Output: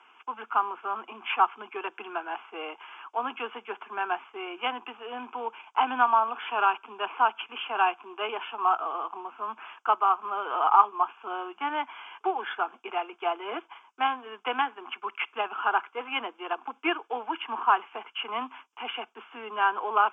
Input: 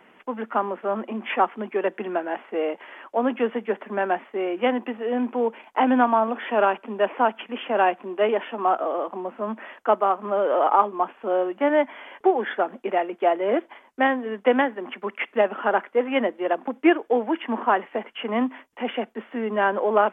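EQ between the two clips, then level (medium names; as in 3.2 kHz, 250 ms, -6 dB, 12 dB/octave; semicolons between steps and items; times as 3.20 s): Bessel high-pass 630 Hz, order 4; distance through air 53 m; static phaser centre 2.8 kHz, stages 8; +3.0 dB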